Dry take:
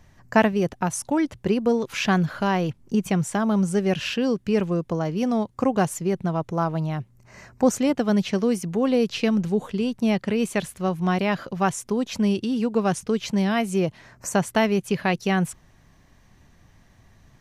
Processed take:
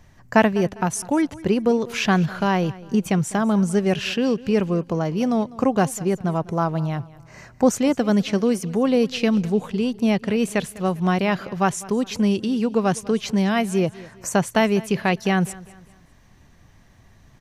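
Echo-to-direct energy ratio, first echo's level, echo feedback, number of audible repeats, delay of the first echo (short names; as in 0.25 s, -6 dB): -19.5 dB, -20.0 dB, 39%, 2, 0.201 s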